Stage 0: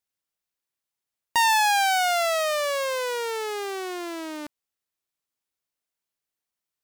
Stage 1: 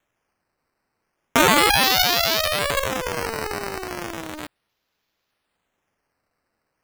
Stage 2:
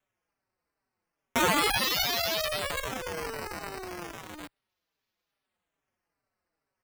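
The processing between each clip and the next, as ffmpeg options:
ffmpeg -i in.wav -af "highshelf=frequency=3100:width_type=q:width=1.5:gain=13,acrusher=samples=9:mix=1:aa=0.000001:lfo=1:lforange=9:lforate=0.35,volume=-2dB" out.wav
ffmpeg -i in.wav -filter_complex "[0:a]asplit=2[link_01][link_02];[link_02]adelay=4.7,afreqshift=-2.4[link_03];[link_01][link_03]amix=inputs=2:normalize=1,volume=-6dB" out.wav

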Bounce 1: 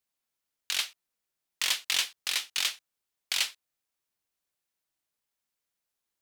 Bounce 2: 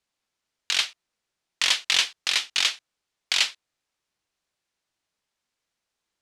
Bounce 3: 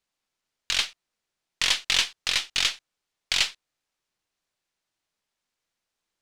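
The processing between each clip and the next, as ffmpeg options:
ffmpeg -i in.wav -af "lowpass=6700,volume=7dB" out.wav
ffmpeg -i in.wav -af "aeval=exprs='if(lt(val(0),0),0.708*val(0),val(0))':channel_layout=same" out.wav

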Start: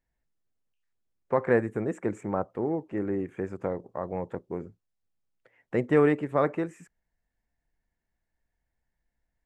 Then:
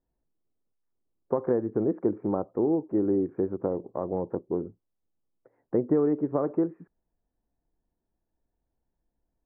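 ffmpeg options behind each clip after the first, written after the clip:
ffmpeg -i in.wav -af "acompressor=threshold=-26dB:ratio=6,lowpass=frequency=1200:width=0.5412,lowpass=frequency=1200:width=1.3066,equalizer=frequency=330:width_type=o:width=1.2:gain=8" out.wav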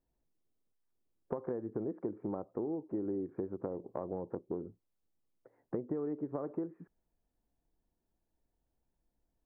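ffmpeg -i in.wav -af "acompressor=threshold=-34dB:ratio=4,volume=-1.5dB" out.wav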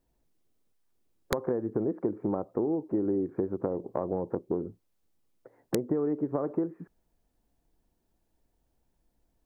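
ffmpeg -i in.wav -af "aeval=exprs='(mod(12.6*val(0)+1,2)-1)/12.6':channel_layout=same,volume=8dB" out.wav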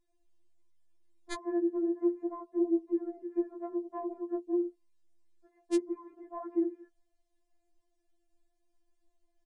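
ffmpeg -i in.wav -af "aresample=22050,aresample=44100,bandreject=frequency=1400:width=12,afftfilt=real='re*4*eq(mod(b,16),0)':imag='im*4*eq(mod(b,16),0)':win_size=2048:overlap=0.75,volume=-1.5dB" out.wav

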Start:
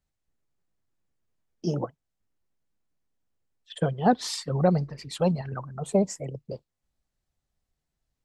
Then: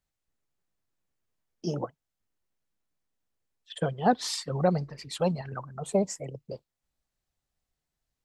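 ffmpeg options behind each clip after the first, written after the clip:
ffmpeg -i in.wav -af "lowshelf=frequency=420:gain=-5" out.wav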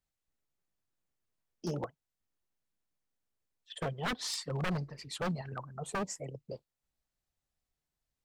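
ffmpeg -i in.wav -af "aeval=exprs='0.0668*(abs(mod(val(0)/0.0668+3,4)-2)-1)':channel_layout=same,volume=-4dB" out.wav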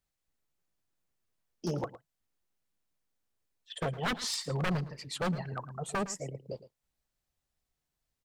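ffmpeg -i in.wav -af "aecho=1:1:111:0.168,volume=2.5dB" out.wav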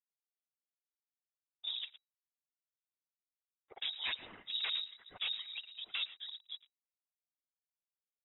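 ffmpeg -i in.wav -af "afftfilt=real='hypot(re,im)*cos(2*PI*random(0))':imag='hypot(re,im)*sin(2*PI*random(1))':win_size=512:overlap=0.75,aeval=exprs='sgn(val(0))*max(abs(val(0))-0.00106,0)':channel_layout=same,lowpass=frequency=3300:width_type=q:width=0.5098,lowpass=frequency=3300:width_type=q:width=0.6013,lowpass=frequency=3300:width_type=q:width=0.9,lowpass=frequency=3300:width_type=q:width=2.563,afreqshift=-3900" out.wav

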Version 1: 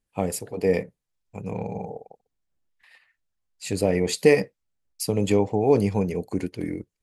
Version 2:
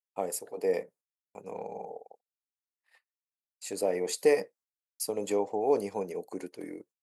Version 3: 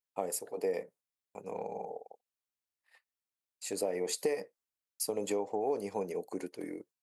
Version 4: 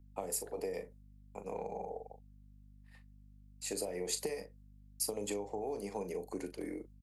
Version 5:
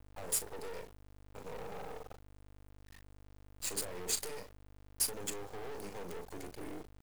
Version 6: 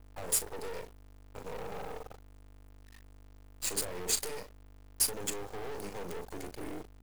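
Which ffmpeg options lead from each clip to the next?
ffmpeg -i in.wav -af "highpass=480,agate=range=-32dB:threshold=-54dB:ratio=16:detection=peak,equalizer=frequency=2800:width=0.73:gain=-9.5,volume=-2dB" out.wav
ffmpeg -i in.wav -af "acompressor=threshold=-29dB:ratio=5" out.wav
ffmpeg -i in.wav -filter_complex "[0:a]asplit=2[link_01][link_02];[link_02]adelay=39,volume=-10.5dB[link_03];[link_01][link_03]amix=inputs=2:normalize=0,aeval=exprs='val(0)+0.00141*(sin(2*PI*50*n/s)+sin(2*PI*2*50*n/s)/2+sin(2*PI*3*50*n/s)/3+sin(2*PI*4*50*n/s)/4+sin(2*PI*5*50*n/s)/5)':channel_layout=same,acrossover=split=180|3000[link_04][link_05][link_06];[link_05]acompressor=threshold=-36dB:ratio=6[link_07];[link_04][link_07][link_06]amix=inputs=3:normalize=0" out.wav
ffmpeg -i in.wav -filter_complex "[0:a]acrossover=split=5700[link_01][link_02];[link_01]asoftclip=type=hard:threshold=-40dB[link_03];[link_03][link_02]amix=inputs=2:normalize=0,acrusher=bits=7:dc=4:mix=0:aa=0.000001,volume=3.5dB" out.wav
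ffmpeg -i in.wav -filter_complex "[0:a]aeval=exprs='val(0)+0.000794*(sin(2*PI*50*n/s)+sin(2*PI*2*50*n/s)/2+sin(2*PI*3*50*n/s)/3+sin(2*PI*4*50*n/s)/4+sin(2*PI*5*50*n/s)/5)':channel_layout=same,asplit=2[link_01][link_02];[link_02]aeval=exprs='sgn(val(0))*max(abs(val(0))-0.00299,0)':channel_layout=same,volume=-4dB[link_03];[link_01][link_03]amix=inputs=2:normalize=0" out.wav

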